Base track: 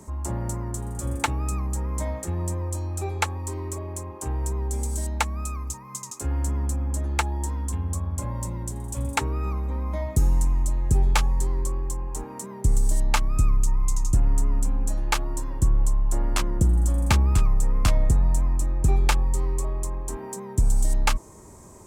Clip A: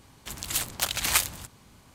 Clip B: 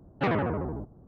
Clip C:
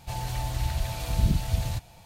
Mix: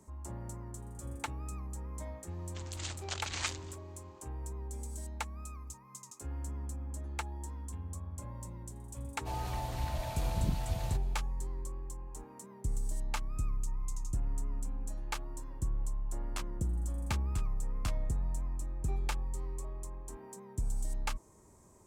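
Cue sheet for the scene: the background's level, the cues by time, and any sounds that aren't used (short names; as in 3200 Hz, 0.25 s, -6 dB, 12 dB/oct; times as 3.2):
base track -14 dB
2.29 add A -10.5 dB + steep low-pass 7600 Hz 48 dB/oct
9.18 add C -9.5 dB, fades 0.10 s + bell 740 Hz +7.5 dB 2.2 oct
not used: B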